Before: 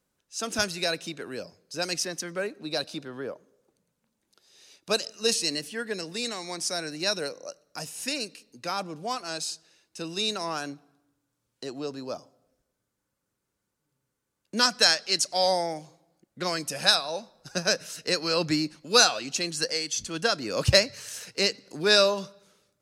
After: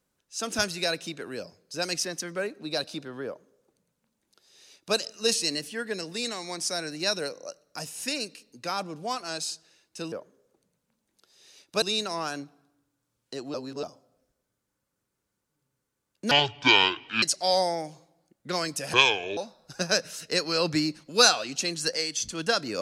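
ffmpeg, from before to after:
-filter_complex "[0:a]asplit=9[a][b][c][d][e][f][g][h][i];[a]atrim=end=10.122[j];[b]atrim=start=3.258:end=4.962[k];[c]atrim=start=10.118:end=11.842[l];[d]atrim=start=11.838:end=12.132,asetpts=PTS-STARTPTS,areverse[m];[e]atrim=start=12.128:end=14.614[n];[f]atrim=start=14.61:end=15.14,asetpts=PTS-STARTPTS,asetrate=25578,aresample=44100,atrim=end_sample=40298,asetpts=PTS-STARTPTS[o];[g]atrim=start=15.136:end=16.854[p];[h]atrim=start=16.85:end=17.13,asetpts=PTS-STARTPTS,asetrate=28224,aresample=44100[q];[i]atrim=start=17.126[r];[j][k]acrossfade=d=0.004:c1=hsin:c2=hsin[s];[s][l]acrossfade=d=0.004:c1=hsin:c2=hsin[t];[t][m]acrossfade=d=0.004:c1=hsin:c2=hsin[u];[u][n]acrossfade=d=0.004:c1=hsin:c2=hsin[v];[v][o]acrossfade=d=0.004:c1=hsin:c2=hsin[w];[w][p]acrossfade=d=0.004:c1=hsin:c2=hsin[x];[x][q]acrossfade=d=0.004:c1=hsin:c2=hsin[y];[y][r]acrossfade=d=0.004:c1=hsin:c2=hsin"

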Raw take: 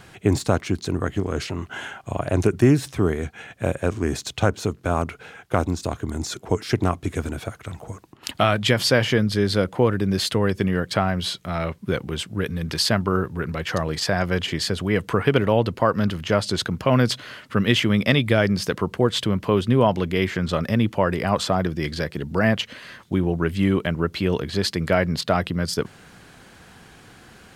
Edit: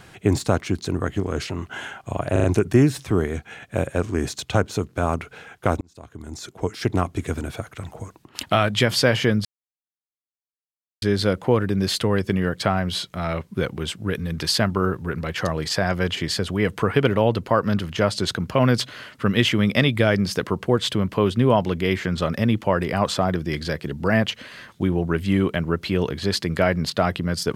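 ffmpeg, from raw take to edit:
-filter_complex "[0:a]asplit=6[a][b][c][d][e][f];[a]atrim=end=2.362[g];[b]atrim=start=2.318:end=2.362[h];[c]atrim=start=2.318:end=2.362[i];[d]atrim=start=2.318:end=5.69,asetpts=PTS-STARTPTS,afade=t=out:st=3.368:d=0.004:c=hsin[j];[e]atrim=start=5.69:end=9.33,asetpts=PTS-STARTPTS,afade=t=in:d=1.21,afade=t=out:st=3.636:d=0.004:c=hsin,apad=pad_dur=1.57[k];[f]atrim=start=9.33,asetpts=PTS-STARTPTS,afade=t=in:d=0.004:c=hsin[l];[g][h]acrossfade=d=0.004:c1=hsin:c2=hsin[m];[m][i]acrossfade=d=0.004:c1=hsin:c2=hsin[n];[j][k][l]concat=n=3:v=0:a=1[o];[n][o]acrossfade=d=0.004:c1=hsin:c2=hsin"

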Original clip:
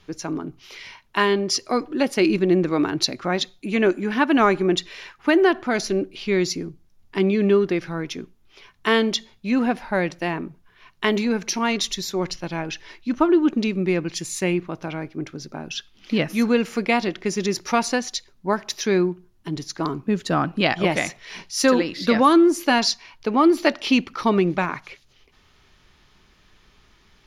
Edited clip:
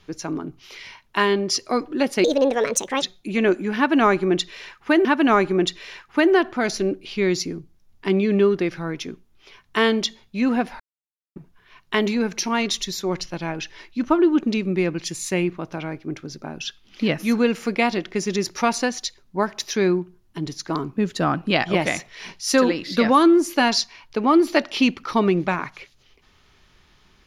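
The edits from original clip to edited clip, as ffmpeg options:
-filter_complex "[0:a]asplit=6[a][b][c][d][e][f];[a]atrim=end=2.244[g];[b]atrim=start=2.24:end=3.4,asetpts=PTS-STARTPTS,asetrate=65709,aresample=44100[h];[c]atrim=start=3.396:end=5.432[i];[d]atrim=start=4.148:end=9.9,asetpts=PTS-STARTPTS,afade=t=out:st=5.748:d=0.004:c=hsin[j];[e]atrim=start=9.9:end=10.46,asetpts=PTS-STARTPTS,volume=0[k];[f]atrim=start=10.46,asetpts=PTS-STARTPTS,afade=t=in:d=0.004:c=hsin[l];[g][h]acrossfade=d=0.004:c1=hsin:c2=hsin[m];[m][i]acrossfade=d=0.004:c1=hsin:c2=hsin[n];[j][k][l]concat=n=3:v=0:a=1[o];[n][o]acrossfade=d=0.004:c1=hsin:c2=hsin"

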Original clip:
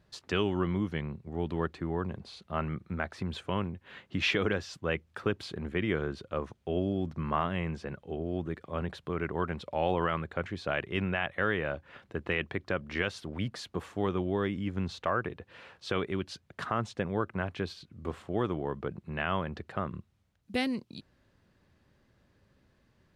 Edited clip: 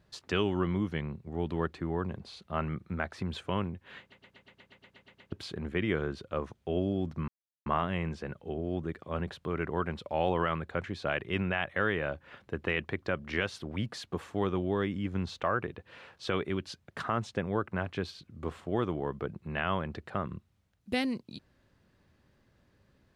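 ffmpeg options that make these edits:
-filter_complex "[0:a]asplit=13[a][b][c][d][e][f][g][h][i][j][k][l][m];[a]atrim=end=4.122[n];[b]atrim=start=3.998:end=4.122[o];[c]atrim=start=3.998:end=4.122[p];[d]atrim=start=3.998:end=4.122[q];[e]atrim=start=3.998:end=4.122[r];[f]atrim=start=3.998:end=4.122[s];[g]atrim=start=3.998:end=4.122[t];[h]atrim=start=3.998:end=4.122[u];[i]atrim=start=3.998:end=4.122[v];[j]atrim=start=3.998:end=4.122[w];[k]atrim=start=3.998:end=4.122[x];[l]atrim=start=5.318:end=7.28,asetpts=PTS-STARTPTS,afade=t=out:st=1.958:d=0.004:c=hsin,apad=pad_dur=0.38[y];[m]atrim=start=7.28,asetpts=PTS-STARTPTS,afade=t=in:d=0.004:c=hsin[z];[n][o]acrossfade=d=0.004:c1=hsin:c2=hsin[aa];[aa][p]acrossfade=d=0.004:c1=hsin:c2=hsin[ab];[ab][q]acrossfade=d=0.004:c1=hsin:c2=hsin[ac];[ac][r]acrossfade=d=0.004:c1=hsin:c2=hsin[ad];[ad][s]acrossfade=d=0.004:c1=hsin:c2=hsin[ae];[ae][t]acrossfade=d=0.004:c1=hsin:c2=hsin[af];[af][u]acrossfade=d=0.004:c1=hsin:c2=hsin[ag];[ag][v]acrossfade=d=0.004:c1=hsin:c2=hsin[ah];[ah][w]acrossfade=d=0.004:c1=hsin:c2=hsin[ai];[ai][x]acrossfade=d=0.004:c1=hsin:c2=hsin[aj];[y][z]concat=n=2:v=0:a=1[ak];[aj][ak]acrossfade=d=0.004:c1=hsin:c2=hsin"

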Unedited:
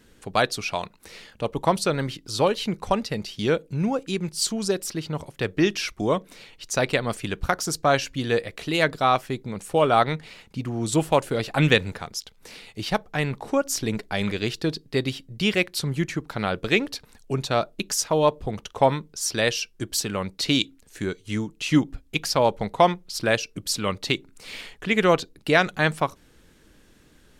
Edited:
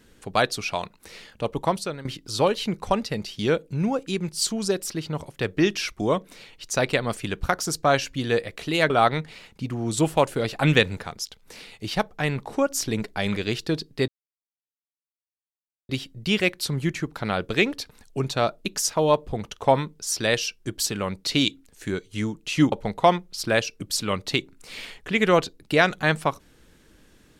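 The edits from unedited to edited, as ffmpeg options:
-filter_complex "[0:a]asplit=5[a][b][c][d][e];[a]atrim=end=2.05,asetpts=PTS-STARTPTS,afade=t=out:st=1.55:d=0.5:silence=0.16788[f];[b]atrim=start=2.05:end=8.902,asetpts=PTS-STARTPTS,afade=t=in:d=0.004:c=hsin:silence=0.16788[g];[c]atrim=start=9.848:end=15.03,asetpts=PTS-STARTPTS,afade=t=out:st=5.178:d=0.004:c=hsin,apad=pad_dur=1.81[h];[d]atrim=start=15.03:end=21.862,asetpts=PTS-STARTPTS,afade=t=in:d=0.004:c=hsin[i];[e]atrim=start=22.478[j];[f][g]concat=n=2:v=0:a=1[k];[h][i]concat=n=2:v=0:a=1[l];[k][l]acrossfade=d=0.004:c1=hsin:c2=hsin[m];[m][j]acrossfade=d=0.004:c1=hsin:c2=hsin"

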